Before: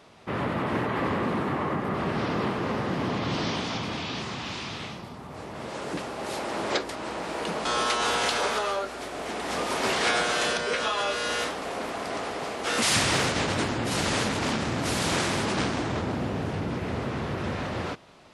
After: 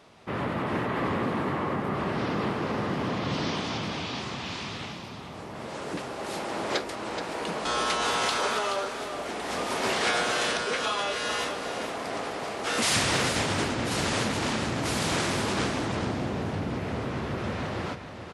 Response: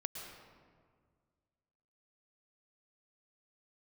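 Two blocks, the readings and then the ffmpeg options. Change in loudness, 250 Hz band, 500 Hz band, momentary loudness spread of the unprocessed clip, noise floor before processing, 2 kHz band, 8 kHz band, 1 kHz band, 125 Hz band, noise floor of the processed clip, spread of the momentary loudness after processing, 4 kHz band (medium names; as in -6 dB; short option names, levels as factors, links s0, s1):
-1.0 dB, -1.0 dB, -1.0 dB, 10 LU, -40 dBFS, -1.0 dB, -1.0 dB, -1.0 dB, -1.0 dB, -40 dBFS, 9 LU, -1.0 dB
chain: -af "aecho=1:1:426:0.376,volume=0.841"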